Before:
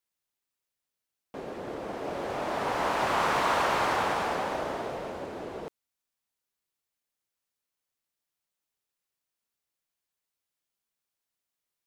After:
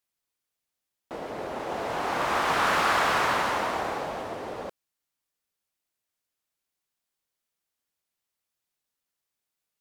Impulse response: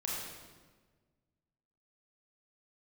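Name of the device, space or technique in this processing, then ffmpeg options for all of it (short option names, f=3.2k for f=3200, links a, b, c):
nightcore: -af "asetrate=53361,aresample=44100,volume=2.5dB"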